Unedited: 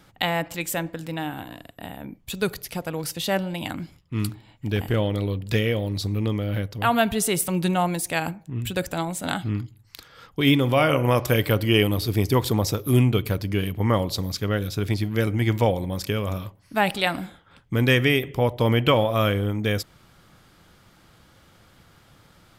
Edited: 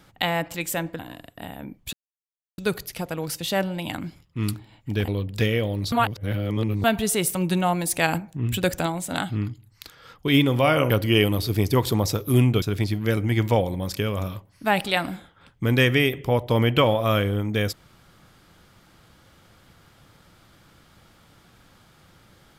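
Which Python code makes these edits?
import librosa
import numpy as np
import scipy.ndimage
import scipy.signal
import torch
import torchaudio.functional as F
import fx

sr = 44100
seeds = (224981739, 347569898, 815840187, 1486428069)

y = fx.edit(x, sr, fx.cut(start_s=0.99, length_s=0.41),
    fx.insert_silence(at_s=2.34, length_s=0.65),
    fx.cut(start_s=4.84, length_s=0.37),
    fx.reverse_span(start_s=6.05, length_s=0.92),
    fx.clip_gain(start_s=8.0, length_s=0.99, db=3.5),
    fx.cut(start_s=11.03, length_s=0.46),
    fx.cut(start_s=13.21, length_s=1.51), tone=tone)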